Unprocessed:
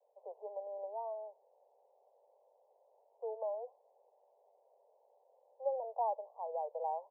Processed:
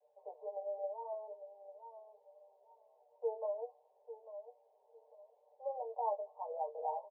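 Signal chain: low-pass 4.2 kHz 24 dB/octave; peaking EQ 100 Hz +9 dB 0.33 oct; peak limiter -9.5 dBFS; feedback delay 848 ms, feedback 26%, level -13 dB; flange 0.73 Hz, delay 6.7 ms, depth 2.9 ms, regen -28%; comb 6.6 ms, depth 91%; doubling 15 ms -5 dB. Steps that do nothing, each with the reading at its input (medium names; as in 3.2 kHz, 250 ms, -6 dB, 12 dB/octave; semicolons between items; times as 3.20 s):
low-pass 4.2 kHz: input has nothing above 1.1 kHz; peaking EQ 100 Hz: input has nothing below 400 Hz; peak limiter -9.5 dBFS: peak at its input -24.5 dBFS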